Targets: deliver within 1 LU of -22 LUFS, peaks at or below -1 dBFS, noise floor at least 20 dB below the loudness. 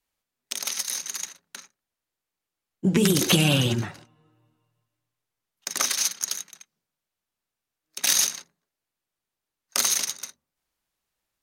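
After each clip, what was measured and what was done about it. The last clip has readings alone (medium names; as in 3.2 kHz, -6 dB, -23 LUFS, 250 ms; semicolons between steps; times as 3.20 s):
loudness -23.5 LUFS; peak level -3.5 dBFS; loudness target -22.0 LUFS
-> trim +1.5 dB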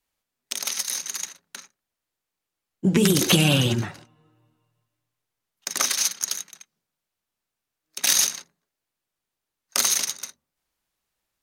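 loudness -22.0 LUFS; peak level -2.0 dBFS; noise floor -85 dBFS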